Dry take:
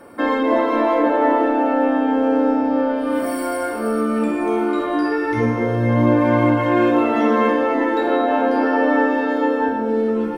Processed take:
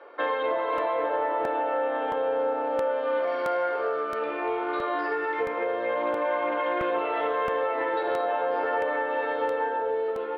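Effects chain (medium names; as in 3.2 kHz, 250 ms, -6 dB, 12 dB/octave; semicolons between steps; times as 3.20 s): elliptic band-pass 420–3700 Hz, stop band 40 dB; compression, threshold -21 dBFS, peak gain reduction 7.5 dB; on a send at -13 dB: reverberation RT60 1.5 s, pre-delay 3 ms; on the sum: crackling interface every 0.67 s, samples 64, repeat, from 0.78 s; loudspeaker Doppler distortion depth 0.12 ms; trim -2.5 dB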